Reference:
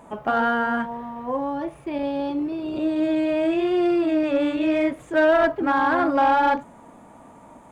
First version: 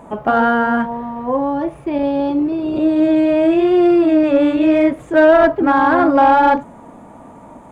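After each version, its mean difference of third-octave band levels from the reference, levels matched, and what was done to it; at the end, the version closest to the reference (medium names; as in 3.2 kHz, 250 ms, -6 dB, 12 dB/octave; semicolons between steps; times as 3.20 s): 2.0 dB: tilt shelf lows +3.5 dB, about 1.4 kHz; trim +5.5 dB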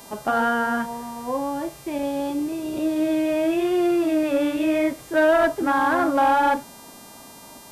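4.5 dB: mains buzz 400 Hz, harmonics 34, -47 dBFS 0 dB/octave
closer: first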